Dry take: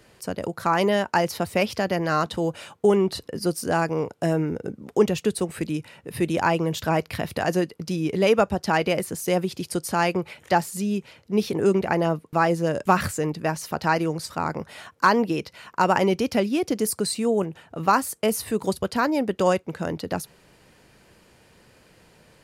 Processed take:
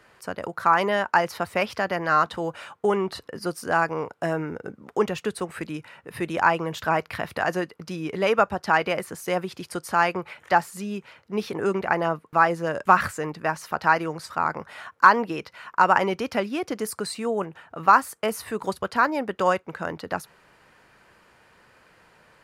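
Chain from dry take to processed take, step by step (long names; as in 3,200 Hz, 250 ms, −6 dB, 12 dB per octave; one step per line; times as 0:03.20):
parametric band 1,300 Hz +13 dB 2 octaves
level −7.5 dB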